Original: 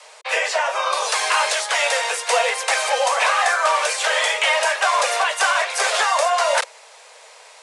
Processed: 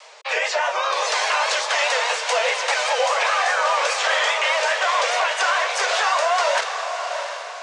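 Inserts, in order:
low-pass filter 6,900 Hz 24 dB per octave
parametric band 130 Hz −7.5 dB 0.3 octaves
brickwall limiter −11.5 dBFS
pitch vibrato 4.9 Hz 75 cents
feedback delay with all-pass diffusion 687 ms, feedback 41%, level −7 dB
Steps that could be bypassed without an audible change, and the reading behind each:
parametric band 130 Hz: nothing at its input below 380 Hz

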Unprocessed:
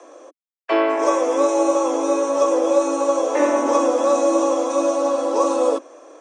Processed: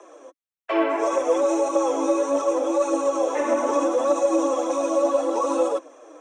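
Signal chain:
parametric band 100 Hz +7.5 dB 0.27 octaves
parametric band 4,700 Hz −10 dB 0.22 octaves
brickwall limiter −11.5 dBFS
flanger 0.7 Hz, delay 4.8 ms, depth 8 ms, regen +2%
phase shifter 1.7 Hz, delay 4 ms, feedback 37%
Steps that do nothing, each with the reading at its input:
parametric band 100 Hz: nothing at its input below 240 Hz

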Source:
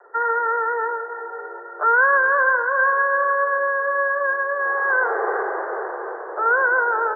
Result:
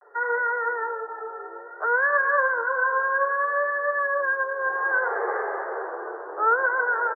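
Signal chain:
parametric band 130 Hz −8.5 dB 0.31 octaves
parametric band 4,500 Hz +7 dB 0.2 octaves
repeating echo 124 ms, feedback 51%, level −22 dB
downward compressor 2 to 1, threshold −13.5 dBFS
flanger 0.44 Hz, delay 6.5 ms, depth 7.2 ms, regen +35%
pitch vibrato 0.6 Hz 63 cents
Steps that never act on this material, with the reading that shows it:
parametric band 130 Hz: nothing at its input below 340 Hz
parametric band 4,500 Hz: nothing at its input above 1,800 Hz

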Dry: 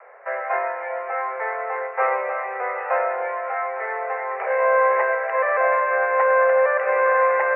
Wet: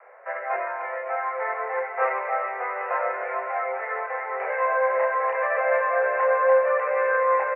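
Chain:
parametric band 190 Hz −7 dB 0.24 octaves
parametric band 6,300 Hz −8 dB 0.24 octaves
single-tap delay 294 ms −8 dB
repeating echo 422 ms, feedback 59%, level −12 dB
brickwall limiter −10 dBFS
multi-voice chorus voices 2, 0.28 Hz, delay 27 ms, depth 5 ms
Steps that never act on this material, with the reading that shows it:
parametric band 190 Hz: nothing at its input below 380 Hz
parametric band 6,300 Hz: nothing at its input above 2,400 Hz

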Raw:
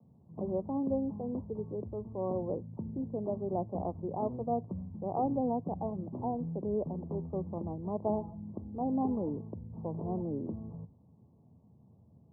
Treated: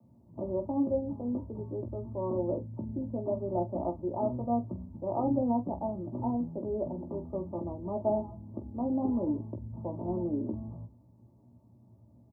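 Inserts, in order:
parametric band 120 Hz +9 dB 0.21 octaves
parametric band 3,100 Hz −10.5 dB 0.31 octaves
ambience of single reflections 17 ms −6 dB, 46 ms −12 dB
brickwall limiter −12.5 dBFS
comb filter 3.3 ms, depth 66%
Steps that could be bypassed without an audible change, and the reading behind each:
parametric band 3,100 Hz: nothing at its input above 1,100 Hz
brickwall limiter −12.5 dBFS: peak of its input −17.5 dBFS

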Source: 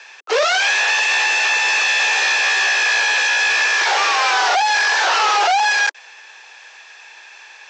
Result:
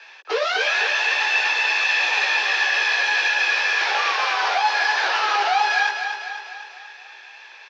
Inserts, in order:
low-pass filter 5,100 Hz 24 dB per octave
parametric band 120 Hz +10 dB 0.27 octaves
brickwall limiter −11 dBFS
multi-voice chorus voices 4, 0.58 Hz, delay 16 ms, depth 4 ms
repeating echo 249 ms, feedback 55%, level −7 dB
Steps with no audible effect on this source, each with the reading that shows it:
parametric band 120 Hz: nothing at its input below 320 Hz

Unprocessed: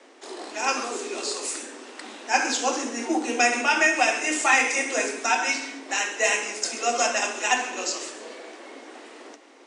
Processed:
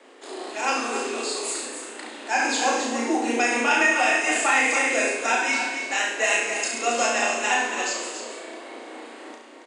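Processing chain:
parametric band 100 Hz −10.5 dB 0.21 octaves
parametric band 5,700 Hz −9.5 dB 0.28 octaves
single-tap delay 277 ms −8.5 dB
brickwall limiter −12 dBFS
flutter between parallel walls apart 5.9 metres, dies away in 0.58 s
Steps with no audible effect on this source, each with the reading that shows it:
parametric band 100 Hz: nothing at its input below 200 Hz

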